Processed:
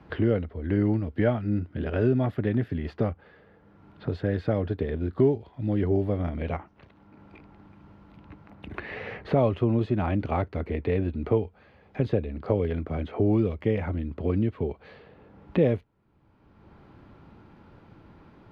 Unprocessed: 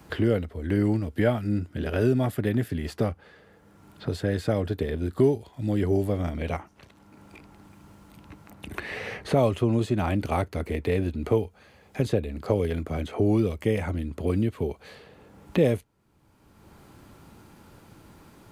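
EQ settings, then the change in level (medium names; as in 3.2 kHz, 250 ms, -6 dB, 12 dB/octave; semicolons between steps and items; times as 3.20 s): distance through air 310 m; 0.0 dB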